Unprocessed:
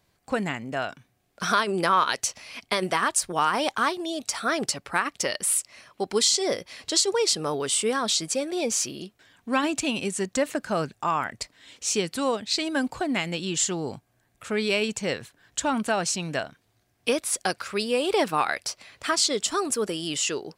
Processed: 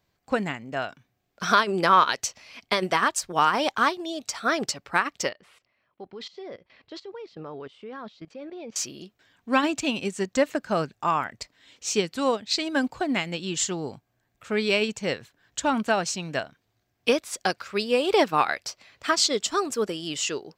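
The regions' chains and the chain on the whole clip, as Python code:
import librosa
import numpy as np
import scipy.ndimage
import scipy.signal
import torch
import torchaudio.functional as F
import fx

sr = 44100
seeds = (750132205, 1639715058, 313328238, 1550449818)

y = fx.chain(x, sr, fx.air_absorb(metres=330.0),
    fx.level_steps(step_db=17), at=(5.29, 8.76))
y = fx.peak_eq(y, sr, hz=9800.0, db=-13.0, octaves=0.38)
y = fx.upward_expand(y, sr, threshold_db=-36.0, expansion=1.5)
y = y * 10.0 ** (4.0 / 20.0)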